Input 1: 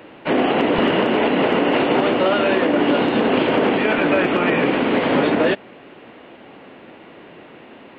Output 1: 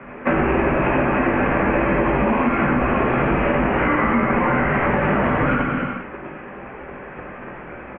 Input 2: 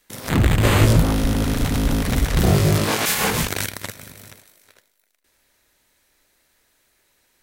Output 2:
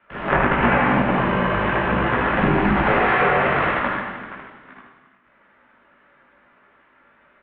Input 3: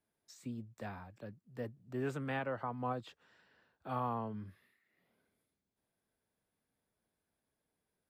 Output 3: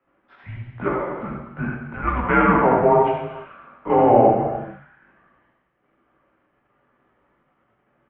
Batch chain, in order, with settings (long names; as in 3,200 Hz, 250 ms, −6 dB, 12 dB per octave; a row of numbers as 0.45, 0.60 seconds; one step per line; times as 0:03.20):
low-shelf EQ 300 Hz −11 dB
single-sideband voice off tune −350 Hz 200–3,300 Hz
three-way crossover with the lows and the highs turned down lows −15 dB, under 150 Hz, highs −24 dB, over 2,300 Hz
on a send: single-tap delay 77 ms −3.5 dB
on the sum: multi-voice chorus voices 6, 0.95 Hz, delay 18 ms, depth 3 ms
in parallel at −2 dB: output level in coarse steps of 16 dB
on the sum: reverb whose tail is shaped and stops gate 470 ms falling, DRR 1.5 dB
downward compressor 6 to 1, threshold −26 dBFS
loudness normalisation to −19 LKFS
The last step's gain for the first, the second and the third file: +10.5, +11.5, +23.0 decibels